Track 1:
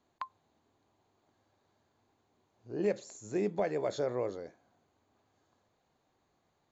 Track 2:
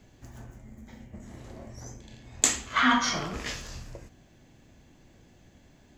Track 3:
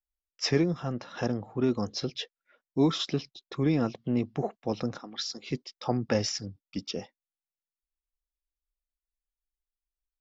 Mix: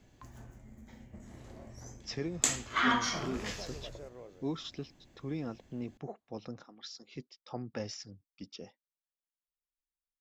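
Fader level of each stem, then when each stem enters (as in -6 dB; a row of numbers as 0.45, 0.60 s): -16.0, -5.5, -12.0 dB; 0.00, 0.00, 1.65 s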